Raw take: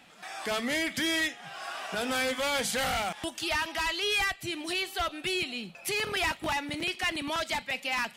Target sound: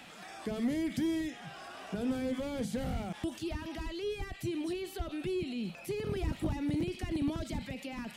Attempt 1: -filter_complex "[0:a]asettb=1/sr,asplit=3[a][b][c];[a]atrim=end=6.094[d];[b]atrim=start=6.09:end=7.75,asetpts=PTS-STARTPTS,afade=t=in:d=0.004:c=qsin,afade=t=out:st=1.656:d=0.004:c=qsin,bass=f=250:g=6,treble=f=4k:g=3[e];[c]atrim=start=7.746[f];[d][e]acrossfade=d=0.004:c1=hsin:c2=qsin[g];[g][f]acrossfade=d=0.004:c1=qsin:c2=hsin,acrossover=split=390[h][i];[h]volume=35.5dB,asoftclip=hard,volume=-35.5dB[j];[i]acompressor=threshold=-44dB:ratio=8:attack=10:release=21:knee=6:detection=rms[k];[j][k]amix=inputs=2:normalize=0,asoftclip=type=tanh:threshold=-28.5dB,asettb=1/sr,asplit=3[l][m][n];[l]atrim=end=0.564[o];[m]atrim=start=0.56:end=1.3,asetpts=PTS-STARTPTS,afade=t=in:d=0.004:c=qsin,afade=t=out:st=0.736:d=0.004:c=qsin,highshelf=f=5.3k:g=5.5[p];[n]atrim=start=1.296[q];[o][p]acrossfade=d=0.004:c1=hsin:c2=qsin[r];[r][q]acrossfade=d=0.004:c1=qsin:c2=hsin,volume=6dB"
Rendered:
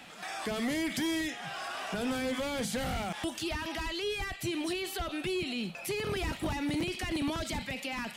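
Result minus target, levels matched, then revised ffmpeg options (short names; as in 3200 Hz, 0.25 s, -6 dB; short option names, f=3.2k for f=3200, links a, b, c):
compressor: peak gain reduction -10 dB; overloaded stage: distortion +11 dB
-filter_complex "[0:a]asettb=1/sr,asplit=3[a][b][c];[a]atrim=end=6.094[d];[b]atrim=start=6.09:end=7.75,asetpts=PTS-STARTPTS,afade=t=in:d=0.004:c=qsin,afade=t=out:st=1.656:d=0.004:c=qsin,bass=f=250:g=6,treble=f=4k:g=3[e];[c]atrim=start=7.746[f];[d][e]acrossfade=d=0.004:c1=hsin:c2=qsin[g];[g][f]acrossfade=d=0.004:c1=qsin:c2=hsin,acrossover=split=390[h][i];[h]volume=29.5dB,asoftclip=hard,volume=-29.5dB[j];[i]acompressor=threshold=-55.5dB:ratio=8:attack=10:release=21:knee=6:detection=rms[k];[j][k]amix=inputs=2:normalize=0,asoftclip=type=tanh:threshold=-28.5dB,asettb=1/sr,asplit=3[l][m][n];[l]atrim=end=0.564[o];[m]atrim=start=0.56:end=1.3,asetpts=PTS-STARTPTS,afade=t=in:d=0.004:c=qsin,afade=t=out:st=0.736:d=0.004:c=qsin,highshelf=f=5.3k:g=5.5[p];[n]atrim=start=1.296[q];[o][p]acrossfade=d=0.004:c1=hsin:c2=qsin[r];[r][q]acrossfade=d=0.004:c1=qsin:c2=hsin,volume=6dB"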